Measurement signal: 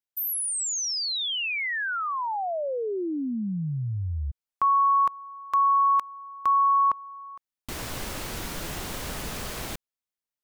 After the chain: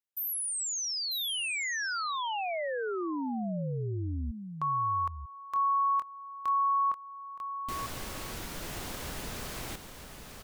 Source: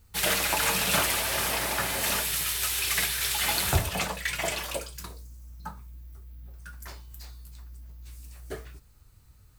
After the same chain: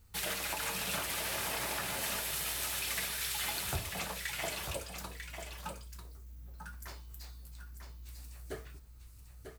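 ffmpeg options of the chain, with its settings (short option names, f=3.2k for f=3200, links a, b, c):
-af "acompressor=threshold=-26dB:ratio=3:attack=0.26:release=698:knee=6:detection=rms,aecho=1:1:945:0.422,volume=-3.5dB"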